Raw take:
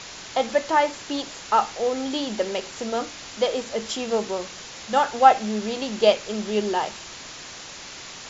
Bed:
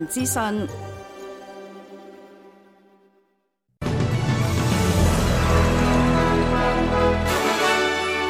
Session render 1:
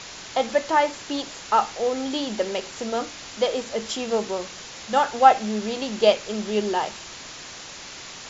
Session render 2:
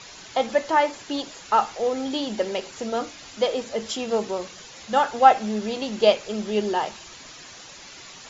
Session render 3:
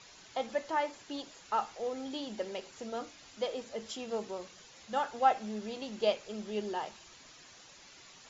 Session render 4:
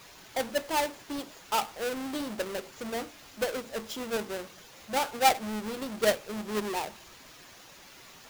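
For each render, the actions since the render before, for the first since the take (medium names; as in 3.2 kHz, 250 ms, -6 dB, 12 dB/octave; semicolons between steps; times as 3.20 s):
no audible change
noise reduction 8 dB, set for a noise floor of -40 dBFS
trim -12 dB
square wave that keeps the level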